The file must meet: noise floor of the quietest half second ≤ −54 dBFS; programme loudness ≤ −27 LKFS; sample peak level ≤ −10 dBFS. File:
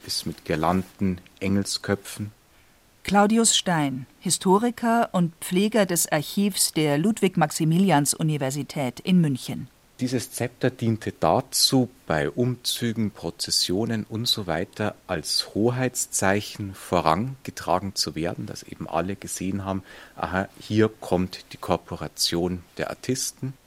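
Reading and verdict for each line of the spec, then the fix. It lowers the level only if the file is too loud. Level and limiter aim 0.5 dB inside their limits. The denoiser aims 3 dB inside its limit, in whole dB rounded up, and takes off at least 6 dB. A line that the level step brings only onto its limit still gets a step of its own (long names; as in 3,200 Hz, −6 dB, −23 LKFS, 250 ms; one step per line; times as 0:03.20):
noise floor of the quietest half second −57 dBFS: in spec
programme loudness −24.0 LKFS: out of spec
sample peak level −3.0 dBFS: out of spec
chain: level −3.5 dB
brickwall limiter −10.5 dBFS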